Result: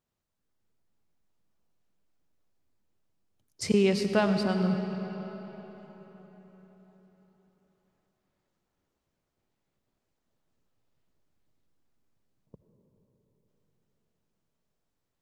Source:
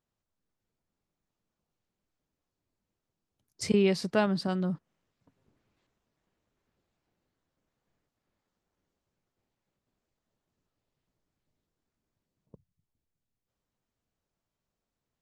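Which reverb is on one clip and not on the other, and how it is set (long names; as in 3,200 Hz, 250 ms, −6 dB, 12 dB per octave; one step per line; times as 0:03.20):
comb and all-pass reverb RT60 4.6 s, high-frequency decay 0.7×, pre-delay 40 ms, DRR 6 dB
level +1 dB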